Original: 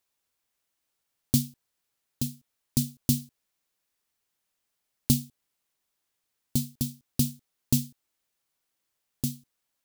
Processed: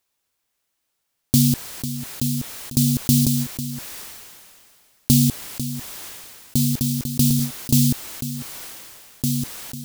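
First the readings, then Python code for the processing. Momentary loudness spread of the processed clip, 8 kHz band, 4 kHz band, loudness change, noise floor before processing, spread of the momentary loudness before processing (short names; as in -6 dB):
17 LU, +10.0 dB, +10.5 dB, +8.5 dB, -81 dBFS, 10 LU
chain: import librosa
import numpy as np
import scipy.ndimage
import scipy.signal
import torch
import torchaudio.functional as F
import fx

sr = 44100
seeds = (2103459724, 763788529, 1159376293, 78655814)

p1 = x + fx.echo_single(x, sr, ms=497, db=-17.0, dry=0)
p2 = fx.sustainer(p1, sr, db_per_s=25.0)
y = p2 * librosa.db_to_amplitude(5.0)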